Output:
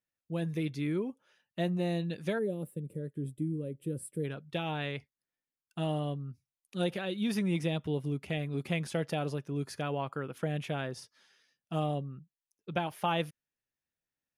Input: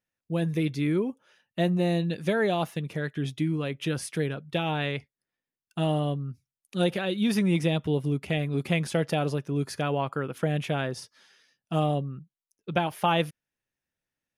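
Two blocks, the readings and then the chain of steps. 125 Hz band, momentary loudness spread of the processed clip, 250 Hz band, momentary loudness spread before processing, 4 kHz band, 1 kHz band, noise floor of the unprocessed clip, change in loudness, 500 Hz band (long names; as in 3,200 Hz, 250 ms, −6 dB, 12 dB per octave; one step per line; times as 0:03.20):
−6.5 dB, 9 LU, −6.5 dB, 9 LU, −7.0 dB, −7.0 dB, below −85 dBFS, −6.5 dB, −6.5 dB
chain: gain on a spectral selection 0:02.39–0:04.24, 590–7,400 Hz −21 dB
level −6.5 dB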